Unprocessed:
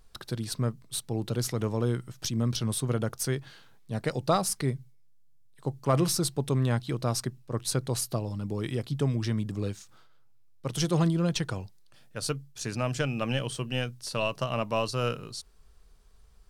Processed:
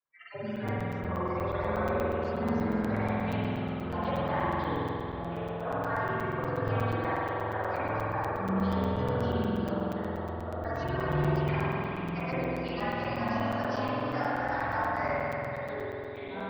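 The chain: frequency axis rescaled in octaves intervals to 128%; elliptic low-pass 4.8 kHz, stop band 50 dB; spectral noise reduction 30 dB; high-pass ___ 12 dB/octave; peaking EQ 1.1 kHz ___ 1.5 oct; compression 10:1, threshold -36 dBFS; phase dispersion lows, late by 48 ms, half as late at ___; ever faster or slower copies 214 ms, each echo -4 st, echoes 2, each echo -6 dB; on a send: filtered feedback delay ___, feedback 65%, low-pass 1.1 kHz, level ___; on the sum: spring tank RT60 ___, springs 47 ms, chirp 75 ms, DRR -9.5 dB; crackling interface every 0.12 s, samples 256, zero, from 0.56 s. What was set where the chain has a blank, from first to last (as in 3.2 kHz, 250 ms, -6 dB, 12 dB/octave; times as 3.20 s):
140 Hz, +13 dB, 520 Hz, 270 ms, -15 dB, 3.2 s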